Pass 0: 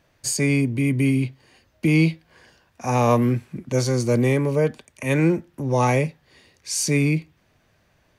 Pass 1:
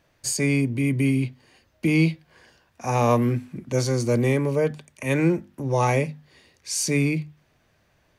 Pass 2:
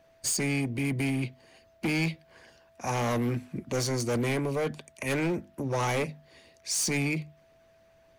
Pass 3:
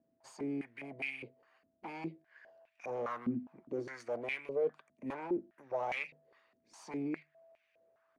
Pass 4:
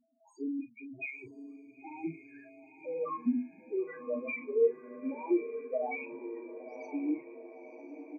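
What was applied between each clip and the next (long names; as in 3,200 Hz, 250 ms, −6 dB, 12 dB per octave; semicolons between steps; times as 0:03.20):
mains-hum notches 50/100/150/200/250 Hz; level −1.5 dB
steady tone 660 Hz −53 dBFS; harmonic and percussive parts rebalanced harmonic −8 dB; hard clipping −26 dBFS, distortion −10 dB; level +1.5 dB
band-pass on a step sequencer 4.9 Hz 250–2,400 Hz
spectral peaks only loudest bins 2; double-tracking delay 37 ms −9.5 dB; feedback delay with all-pass diffusion 986 ms, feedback 53%, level −11.5 dB; level +6.5 dB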